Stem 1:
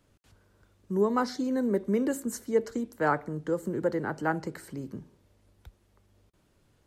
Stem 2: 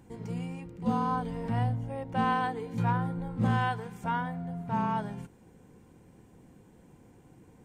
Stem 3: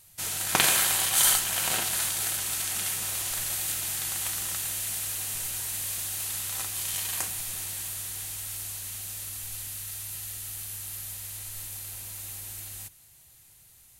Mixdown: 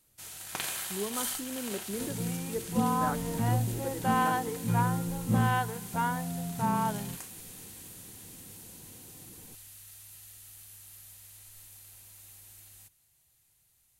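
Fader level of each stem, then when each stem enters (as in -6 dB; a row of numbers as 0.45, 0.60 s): -10.5, +1.0, -13.0 dB; 0.00, 1.90, 0.00 s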